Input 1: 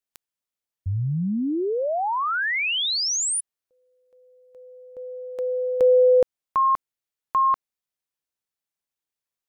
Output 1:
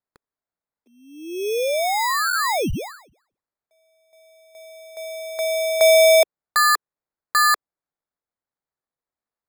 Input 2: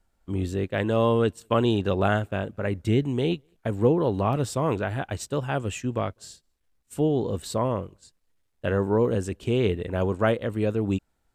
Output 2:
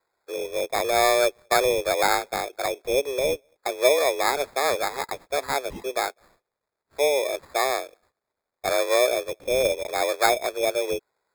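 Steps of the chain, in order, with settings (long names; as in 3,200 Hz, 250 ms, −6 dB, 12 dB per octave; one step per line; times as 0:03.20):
single-sideband voice off tune +140 Hz 270–2,900 Hz
decimation without filtering 15×
level +3 dB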